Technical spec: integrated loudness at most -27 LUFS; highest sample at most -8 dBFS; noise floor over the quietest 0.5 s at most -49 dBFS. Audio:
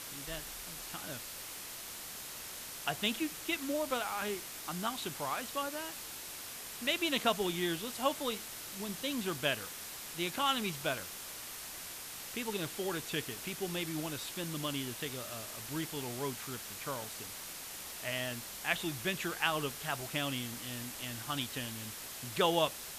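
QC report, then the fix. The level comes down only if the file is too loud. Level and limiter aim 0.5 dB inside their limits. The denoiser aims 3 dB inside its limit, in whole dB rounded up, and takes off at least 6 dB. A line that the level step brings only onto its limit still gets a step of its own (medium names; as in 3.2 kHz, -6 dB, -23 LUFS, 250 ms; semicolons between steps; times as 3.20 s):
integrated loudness -36.5 LUFS: pass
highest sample -15.0 dBFS: pass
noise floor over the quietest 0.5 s -45 dBFS: fail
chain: noise reduction 7 dB, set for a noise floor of -45 dBFS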